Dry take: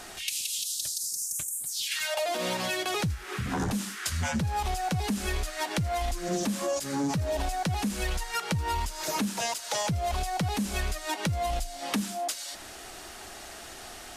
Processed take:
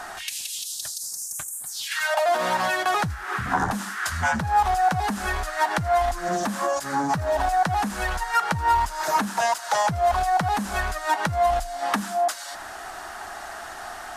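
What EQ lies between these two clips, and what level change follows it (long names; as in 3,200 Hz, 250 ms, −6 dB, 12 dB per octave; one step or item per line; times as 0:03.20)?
flat-topped bell 1,100 Hz +12 dB
0.0 dB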